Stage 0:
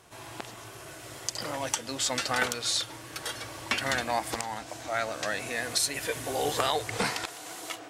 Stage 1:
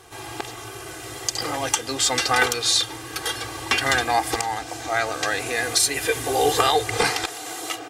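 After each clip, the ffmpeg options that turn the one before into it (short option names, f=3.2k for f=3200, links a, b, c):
-af "aecho=1:1:2.5:0.71,acontrast=68"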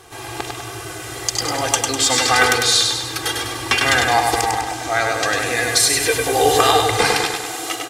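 -af "aecho=1:1:100|200|300|400|500|600|700:0.631|0.334|0.177|0.0939|0.0498|0.0264|0.014,volume=3.5dB"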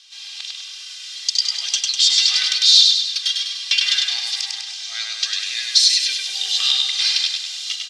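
-af "asoftclip=type=hard:threshold=-10.5dB,asuperpass=centerf=4200:order=4:qfactor=1.7,volume=7dB"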